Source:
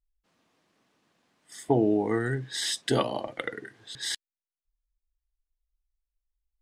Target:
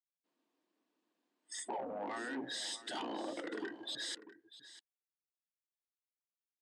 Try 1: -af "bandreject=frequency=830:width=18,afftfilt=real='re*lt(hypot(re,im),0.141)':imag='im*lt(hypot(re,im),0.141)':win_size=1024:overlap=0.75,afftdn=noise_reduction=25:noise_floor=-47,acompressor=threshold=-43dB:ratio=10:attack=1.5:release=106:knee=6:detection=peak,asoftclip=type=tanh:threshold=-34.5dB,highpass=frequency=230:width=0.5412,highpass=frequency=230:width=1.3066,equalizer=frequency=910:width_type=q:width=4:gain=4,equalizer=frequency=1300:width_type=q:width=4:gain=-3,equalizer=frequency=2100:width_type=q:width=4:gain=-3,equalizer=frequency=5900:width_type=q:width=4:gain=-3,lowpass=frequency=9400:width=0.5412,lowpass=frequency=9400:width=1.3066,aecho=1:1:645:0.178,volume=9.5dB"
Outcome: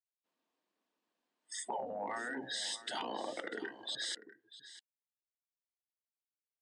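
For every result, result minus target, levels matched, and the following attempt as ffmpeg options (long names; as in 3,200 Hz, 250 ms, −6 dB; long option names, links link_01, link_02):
soft clipping: distortion −15 dB; 250 Hz band −5.0 dB
-af "bandreject=frequency=830:width=18,afftfilt=real='re*lt(hypot(re,im),0.141)':imag='im*lt(hypot(re,im),0.141)':win_size=1024:overlap=0.75,afftdn=noise_reduction=25:noise_floor=-47,acompressor=threshold=-43dB:ratio=10:attack=1.5:release=106:knee=6:detection=peak,asoftclip=type=tanh:threshold=-44.5dB,highpass=frequency=230:width=0.5412,highpass=frequency=230:width=1.3066,equalizer=frequency=910:width_type=q:width=4:gain=4,equalizer=frequency=1300:width_type=q:width=4:gain=-3,equalizer=frequency=2100:width_type=q:width=4:gain=-3,equalizer=frequency=5900:width_type=q:width=4:gain=-3,lowpass=frequency=9400:width=0.5412,lowpass=frequency=9400:width=1.3066,aecho=1:1:645:0.178,volume=9.5dB"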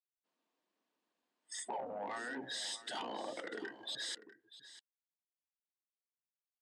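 250 Hz band −5.0 dB
-af "bandreject=frequency=830:width=18,afftfilt=real='re*lt(hypot(re,im),0.141)':imag='im*lt(hypot(re,im),0.141)':win_size=1024:overlap=0.75,afftdn=noise_reduction=25:noise_floor=-47,acompressor=threshold=-43dB:ratio=10:attack=1.5:release=106:knee=6:detection=peak,equalizer=frequency=310:width_type=o:width=0.68:gain=9,asoftclip=type=tanh:threshold=-44.5dB,highpass=frequency=230:width=0.5412,highpass=frequency=230:width=1.3066,equalizer=frequency=910:width_type=q:width=4:gain=4,equalizer=frequency=1300:width_type=q:width=4:gain=-3,equalizer=frequency=2100:width_type=q:width=4:gain=-3,equalizer=frequency=5900:width_type=q:width=4:gain=-3,lowpass=frequency=9400:width=0.5412,lowpass=frequency=9400:width=1.3066,aecho=1:1:645:0.178,volume=9.5dB"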